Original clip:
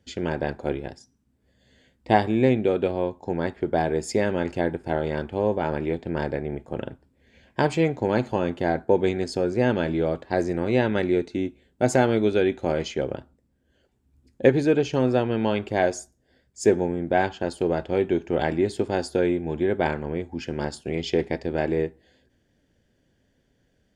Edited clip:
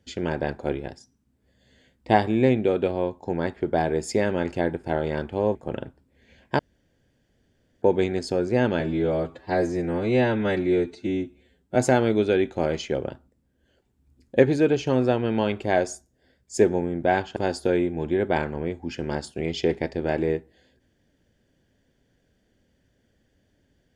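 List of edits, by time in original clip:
0:05.55–0:06.60: remove
0:07.64–0:08.87: fill with room tone
0:09.85–0:11.82: time-stretch 1.5×
0:17.43–0:18.86: remove

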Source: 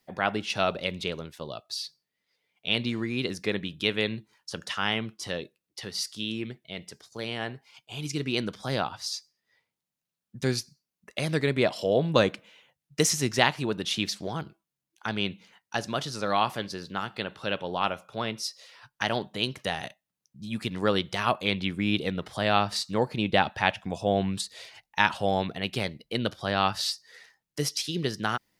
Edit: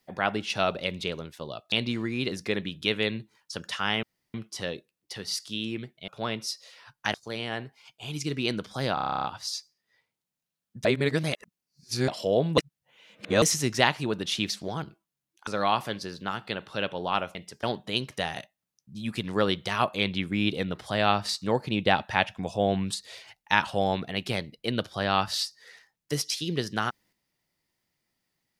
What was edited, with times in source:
0:01.72–0:02.70: remove
0:05.01: splice in room tone 0.31 s
0:06.75–0:07.03: swap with 0:18.04–0:19.10
0:08.83: stutter 0.03 s, 11 plays
0:10.44–0:11.67: reverse
0:12.17–0:13.01: reverse
0:15.06–0:16.16: remove

